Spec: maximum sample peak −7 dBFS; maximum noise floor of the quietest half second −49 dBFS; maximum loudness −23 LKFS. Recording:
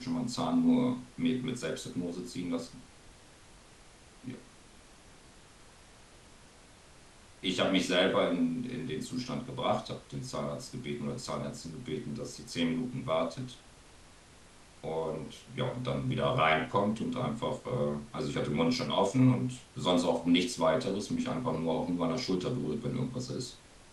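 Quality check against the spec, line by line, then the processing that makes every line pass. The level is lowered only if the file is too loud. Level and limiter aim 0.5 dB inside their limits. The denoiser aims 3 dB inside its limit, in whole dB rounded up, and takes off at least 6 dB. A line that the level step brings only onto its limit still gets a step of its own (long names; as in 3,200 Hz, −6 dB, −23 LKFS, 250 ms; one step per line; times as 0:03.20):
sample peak −13.0 dBFS: in spec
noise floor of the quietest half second −56 dBFS: in spec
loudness −32.0 LKFS: in spec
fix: no processing needed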